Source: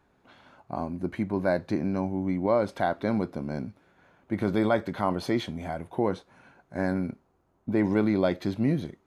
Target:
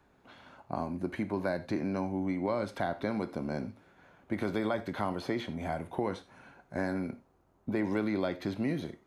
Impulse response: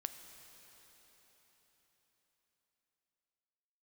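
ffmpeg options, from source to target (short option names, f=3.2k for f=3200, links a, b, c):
-filter_complex "[0:a]acrossover=split=280|1300|2600[a][b][c][d];[a]acompressor=threshold=-38dB:ratio=4[e];[b]acompressor=threshold=-33dB:ratio=4[f];[c]acompressor=threshold=-43dB:ratio=4[g];[d]acompressor=threshold=-51dB:ratio=4[h];[e][f][g][h]amix=inputs=4:normalize=0[i];[1:a]atrim=start_sample=2205,atrim=end_sample=4410[j];[i][j]afir=irnorm=-1:irlink=0,volume=3.5dB"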